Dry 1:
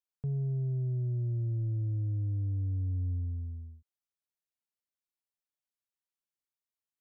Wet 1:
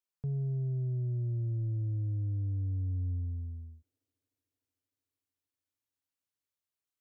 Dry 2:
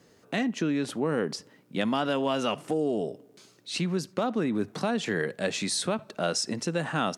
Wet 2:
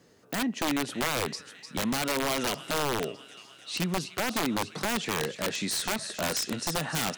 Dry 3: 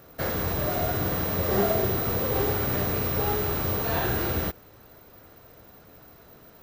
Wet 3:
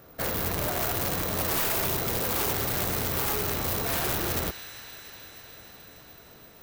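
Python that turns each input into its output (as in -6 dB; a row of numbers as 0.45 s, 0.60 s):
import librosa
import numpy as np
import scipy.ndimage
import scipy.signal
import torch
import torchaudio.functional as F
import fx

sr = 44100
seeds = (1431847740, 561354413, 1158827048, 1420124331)

y = fx.echo_wet_highpass(x, sr, ms=302, feedback_pct=75, hz=2100.0, wet_db=-8.0)
y = (np.mod(10.0 ** (20.5 / 20.0) * y + 1.0, 2.0) - 1.0) / 10.0 ** (20.5 / 20.0)
y = F.gain(torch.from_numpy(y), -1.0).numpy()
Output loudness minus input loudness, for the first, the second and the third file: -1.0 LU, -0.5 LU, -1.0 LU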